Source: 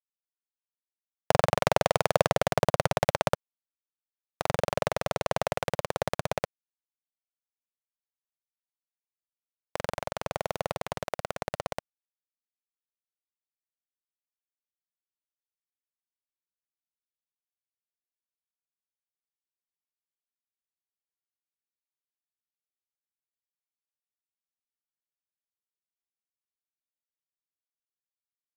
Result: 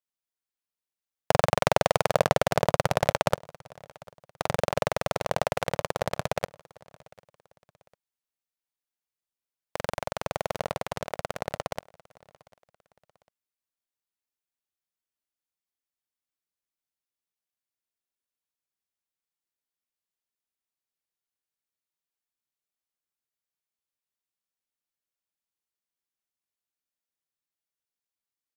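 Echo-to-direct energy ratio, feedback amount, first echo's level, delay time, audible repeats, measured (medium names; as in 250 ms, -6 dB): -23.5 dB, 35%, -24.0 dB, 748 ms, 2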